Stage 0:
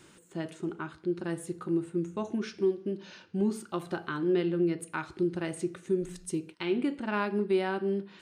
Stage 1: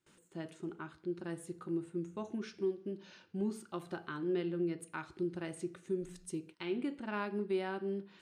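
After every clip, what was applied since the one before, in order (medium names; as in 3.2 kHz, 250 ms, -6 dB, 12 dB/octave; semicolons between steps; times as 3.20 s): gate with hold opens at -46 dBFS; trim -7.5 dB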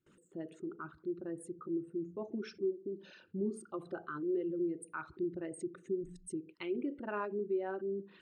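resonances exaggerated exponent 2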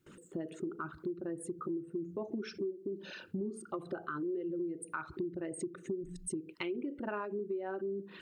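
compression 6:1, threshold -46 dBFS, peak gain reduction 15 dB; trim +10.5 dB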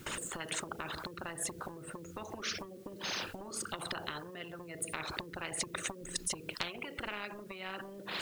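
spectrum-flattening compressor 10:1; trim +6 dB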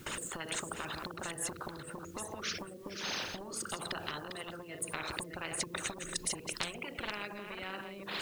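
chunks repeated in reverse 457 ms, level -7 dB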